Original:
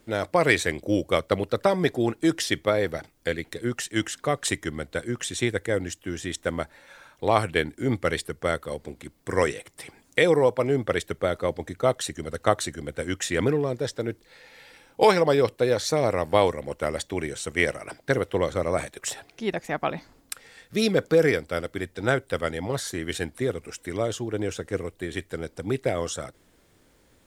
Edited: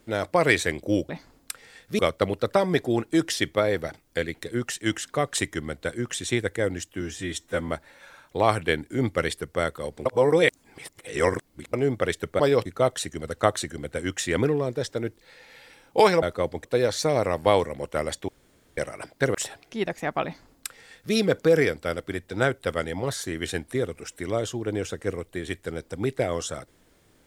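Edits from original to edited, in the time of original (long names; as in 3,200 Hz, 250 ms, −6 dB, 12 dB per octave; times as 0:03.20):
0:06.11–0:06.56: time-stretch 1.5×
0:08.93–0:10.61: reverse
0:11.27–0:11.69: swap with 0:15.26–0:15.52
0:17.16–0:17.65: fill with room tone
0:18.22–0:19.01: remove
0:19.91–0:20.81: duplicate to 0:01.09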